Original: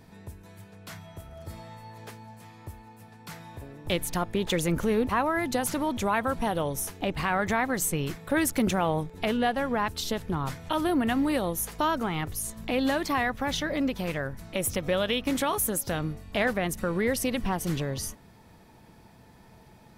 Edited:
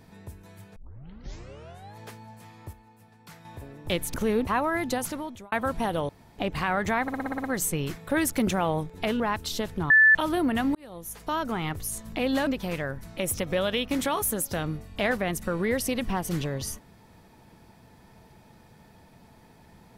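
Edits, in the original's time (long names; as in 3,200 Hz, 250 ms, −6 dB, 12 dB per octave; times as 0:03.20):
0:00.76: tape start 1.22 s
0:02.73–0:03.45: clip gain −6 dB
0:04.14–0:04.76: remove
0:05.51–0:06.14: fade out
0:06.71–0:07.00: fill with room tone
0:07.64: stutter 0.06 s, 8 plays
0:09.40–0:09.72: remove
0:10.42–0:10.67: beep over 1,750 Hz −13 dBFS
0:11.27–0:12.10: fade in
0:12.99–0:13.83: remove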